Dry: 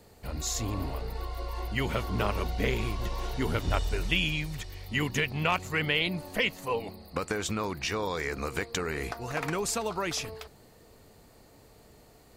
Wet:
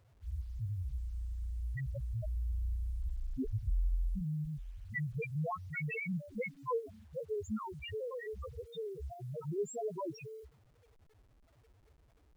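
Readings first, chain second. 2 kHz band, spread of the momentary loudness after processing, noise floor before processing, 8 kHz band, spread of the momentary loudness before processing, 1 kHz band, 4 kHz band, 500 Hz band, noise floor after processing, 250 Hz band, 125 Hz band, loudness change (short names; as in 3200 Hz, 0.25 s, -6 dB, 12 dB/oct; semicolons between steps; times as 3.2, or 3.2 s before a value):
-14.0 dB, 8 LU, -57 dBFS, -21.0 dB, 10 LU, -12.5 dB, -25.0 dB, -7.0 dB, -66 dBFS, -8.5 dB, -4.5 dB, -9.0 dB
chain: LFO notch square 0.33 Hz 280–4400 Hz; loudest bins only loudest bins 1; requantised 12-bit, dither none; gain +3 dB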